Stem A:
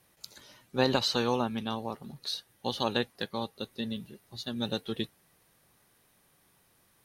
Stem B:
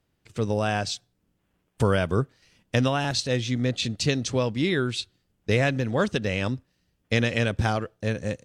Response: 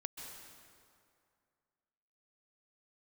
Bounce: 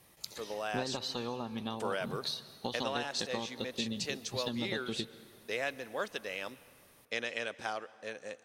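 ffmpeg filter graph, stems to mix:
-filter_complex "[0:a]bandreject=frequency=1500:width=7.9,acompressor=threshold=-38dB:ratio=10,volume=2dB,asplit=2[link_01][link_02];[link_02]volume=-7dB[link_03];[1:a]highpass=500,volume=-10.5dB,asplit=2[link_04][link_05];[link_05]volume=-12dB[link_06];[2:a]atrim=start_sample=2205[link_07];[link_03][link_06]amix=inputs=2:normalize=0[link_08];[link_08][link_07]afir=irnorm=-1:irlink=0[link_09];[link_01][link_04][link_09]amix=inputs=3:normalize=0"

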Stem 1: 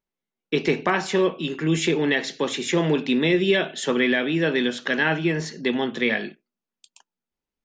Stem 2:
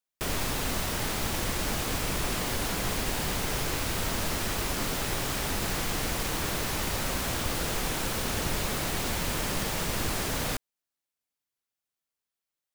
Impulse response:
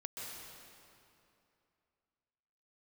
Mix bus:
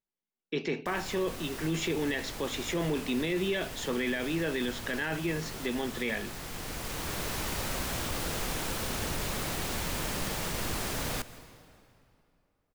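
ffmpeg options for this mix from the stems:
-filter_complex "[0:a]volume=-8dB,asplit=2[link_01][link_02];[1:a]adelay=650,volume=-4.5dB,asplit=2[link_03][link_04];[link_04]volume=-11dB[link_05];[link_02]apad=whole_len=590605[link_06];[link_03][link_06]sidechaincompress=threshold=-36dB:ratio=8:attack=5.3:release=1200[link_07];[2:a]atrim=start_sample=2205[link_08];[link_05][link_08]afir=irnorm=-1:irlink=0[link_09];[link_01][link_07][link_09]amix=inputs=3:normalize=0,alimiter=limit=-22dB:level=0:latency=1:release=12"

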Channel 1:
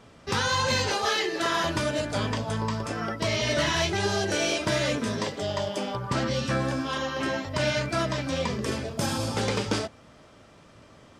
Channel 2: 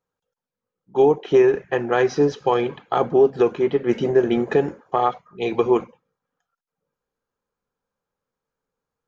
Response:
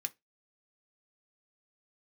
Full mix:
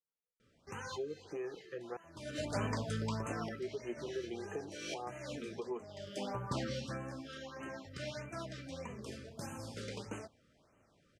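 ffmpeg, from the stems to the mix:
-filter_complex "[0:a]adelay=400,volume=-7.5dB,afade=type=in:start_time=2.05:duration=0.41:silence=0.298538,afade=type=out:start_time=6.31:duration=0.69:silence=0.354813[link_01];[1:a]acrossover=split=210|600[link_02][link_03][link_04];[link_02]acompressor=threshold=-39dB:ratio=4[link_05];[link_03]acompressor=threshold=-17dB:ratio=4[link_06];[link_04]acompressor=threshold=-26dB:ratio=4[link_07];[link_05][link_06][link_07]amix=inputs=3:normalize=0,flanger=delay=4.3:depth=2:regen=-36:speed=0.33:shape=triangular,volume=-17.5dB,asplit=3[link_08][link_09][link_10];[link_08]atrim=end=1.97,asetpts=PTS-STARTPTS,afade=type=out:start_time=1.966:duration=0.004:curve=hsin[link_11];[link_09]atrim=start=1.97:end=3.48,asetpts=PTS-STARTPTS,volume=0[link_12];[link_10]atrim=start=3.48,asetpts=PTS-STARTPTS,afade=type=in:duration=0.004:curve=hsin[link_13];[link_11][link_12][link_13]concat=n=3:v=0:a=1,asplit=2[link_14][link_15];[link_15]apad=whole_len=511211[link_16];[link_01][link_16]sidechaincompress=threshold=-55dB:ratio=10:attack=12:release=390[link_17];[link_17][link_14]amix=inputs=2:normalize=0,afftfilt=real='re*(1-between(b*sr/1024,800*pow(4400/800,0.5+0.5*sin(2*PI*1.6*pts/sr))/1.41,800*pow(4400/800,0.5+0.5*sin(2*PI*1.6*pts/sr))*1.41))':imag='im*(1-between(b*sr/1024,800*pow(4400/800,0.5+0.5*sin(2*PI*1.6*pts/sr))/1.41,800*pow(4400/800,0.5+0.5*sin(2*PI*1.6*pts/sr))*1.41))':win_size=1024:overlap=0.75"

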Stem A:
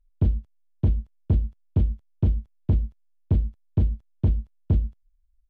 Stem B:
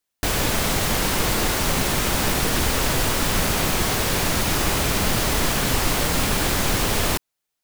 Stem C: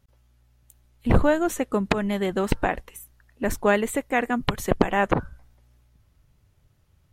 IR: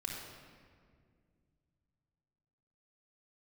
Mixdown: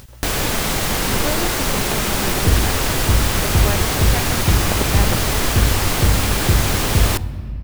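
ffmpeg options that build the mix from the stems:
-filter_complex "[0:a]adelay=2250,volume=0.5dB,asplit=2[link_01][link_02];[link_02]volume=-3.5dB[link_03];[1:a]bandreject=frequency=82.47:width_type=h:width=4,bandreject=frequency=164.94:width_type=h:width=4,bandreject=frequency=247.41:width_type=h:width=4,bandreject=frequency=329.88:width_type=h:width=4,bandreject=frequency=412.35:width_type=h:width=4,bandreject=frequency=494.82:width_type=h:width=4,bandreject=frequency=577.29:width_type=h:width=4,bandreject=frequency=659.76:width_type=h:width=4,bandreject=frequency=742.23:width_type=h:width=4,bandreject=frequency=824.7:width_type=h:width=4,bandreject=frequency=907.17:width_type=h:width=4,bandreject=frequency=989.64:width_type=h:width=4,volume=1dB,asplit=2[link_04][link_05];[link_05]volume=-16.5dB[link_06];[2:a]volume=-6.5dB[link_07];[3:a]atrim=start_sample=2205[link_08];[link_03][link_06]amix=inputs=2:normalize=0[link_09];[link_09][link_08]afir=irnorm=-1:irlink=0[link_10];[link_01][link_04][link_07][link_10]amix=inputs=4:normalize=0,acompressor=mode=upward:threshold=-20dB:ratio=2.5"

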